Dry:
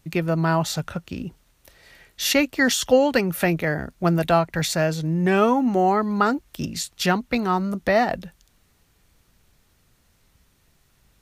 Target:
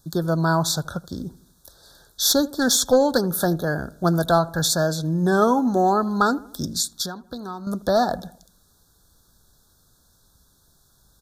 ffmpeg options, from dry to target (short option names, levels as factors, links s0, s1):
-filter_complex "[0:a]lowpass=f=3800:p=1,asettb=1/sr,asplit=3[s0][s1][s2];[s0]atrim=end=6.994[s3];[s1]atrim=start=6.99:end=7.67,asetpts=PTS-STARTPTS,afade=t=in:d=0.004:c=qsin,afade=t=out:st=0.676:d=0.004:c=qsin,acompressor=threshold=0.0282:ratio=6[s4];[s2]atrim=start=7.666[s5];[s3][s4]acrossfade=d=0.004:c1=hsin:c2=qsin[s6];[s6][s5]acrossfade=d=0.004:c1=qsin:c2=hsin,crystalizer=i=3.5:c=0,aeval=exprs='clip(val(0),-1,0.266)':c=same,asuperstop=centerf=2400:order=20:qfactor=1.4,asplit=2[s7][s8];[s8]adelay=79,lowpass=f=1600:p=1,volume=0.106,asplit=2[s9][s10];[s10]adelay=79,lowpass=f=1600:p=1,volume=0.54,asplit=2[s11][s12];[s12]adelay=79,lowpass=f=1600:p=1,volume=0.54,asplit=2[s13][s14];[s14]adelay=79,lowpass=f=1600:p=1,volume=0.54[s15];[s7][s9][s11][s13][s15]amix=inputs=5:normalize=0"